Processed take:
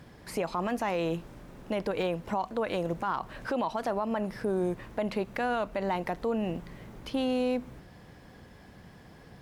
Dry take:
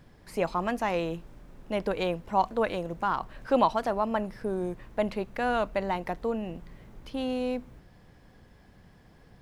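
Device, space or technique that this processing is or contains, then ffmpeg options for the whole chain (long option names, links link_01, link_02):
podcast mastering chain: -af "highpass=frequency=85:poles=1,deesser=1,acompressor=threshold=-31dB:ratio=3,alimiter=level_in=3dB:limit=-24dB:level=0:latency=1:release=38,volume=-3dB,volume=6.5dB" -ar 44100 -c:a libmp3lame -b:a 112k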